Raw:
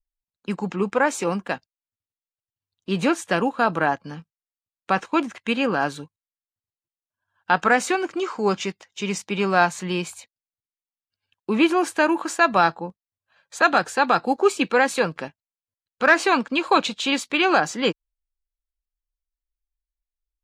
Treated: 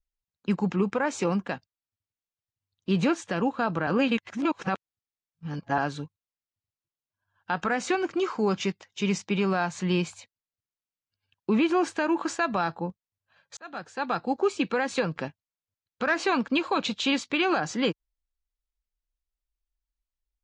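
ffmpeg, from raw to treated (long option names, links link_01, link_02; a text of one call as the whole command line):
ffmpeg -i in.wav -filter_complex "[0:a]asplit=4[link_01][link_02][link_03][link_04];[link_01]atrim=end=3.872[link_05];[link_02]atrim=start=3.868:end=5.782,asetpts=PTS-STARTPTS,areverse[link_06];[link_03]atrim=start=5.778:end=13.57,asetpts=PTS-STARTPTS,afade=type=out:start_time=7.788:duration=0.004:curve=hsin[link_07];[link_04]atrim=start=13.57,asetpts=PTS-STARTPTS,afade=type=in:duration=1.26[link_08];[link_05][link_06]acrossfade=duration=0.004:curve1=hsin:curve2=hsin[link_09];[link_07][link_08]concat=n=2:v=0:a=1[link_10];[link_09][link_10]acrossfade=duration=0.004:curve1=hsin:curve2=hsin,lowpass=frequency=7000:width=0.5412,lowpass=frequency=7000:width=1.3066,equalizer=frequency=93:width_type=o:width=2.5:gain=8,alimiter=limit=-12.5dB:level=0:latency=1:release=136,volume=-2.5dB" out.wav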